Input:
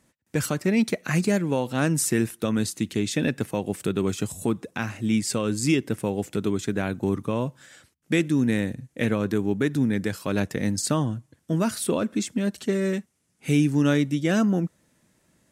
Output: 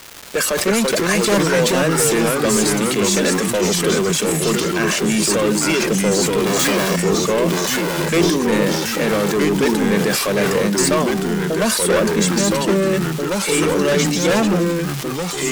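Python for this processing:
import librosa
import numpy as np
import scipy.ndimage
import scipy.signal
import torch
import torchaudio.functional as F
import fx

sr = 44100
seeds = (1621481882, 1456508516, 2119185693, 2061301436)

p1 = fx.clip_1bit(x, sr, at=(6.46, 6.96))
p2 = scipy.signal.sosfilt(scipy.signal.ellip(4, 1.0, 40, 200.0, 'highpass', fs=sr, output='sos'), p1)
p3 = p2 + 0.71 * np.pad(p2, (int(1.8 * sr / 1000.0), 0))[:len(p2)]
p4 = fx.level_steps(p3, sr, step_db=22)
p5 = p3 + (p4 * 10.0 ** (2.0 / 20.0))
p6 = fx.dmg_crackle(p5, sr, seeds[0], per_s=570.0, level_db=-31.0)
p7 = np.clip(10.0 ** (23.0 / 20.0) * p6, -1.0, 1.0) / 10.0 ** (23.0 / 20.0)
p8 = fx.echo_pitch(p7, sr, ms=275, semitones=-2, count=3, db_per_echo=-3.0)
p9 = fx.sustainer(p8, sr, db_per_s=29.0)
y = p9 * 10.0 ** (8.0 / 20.0)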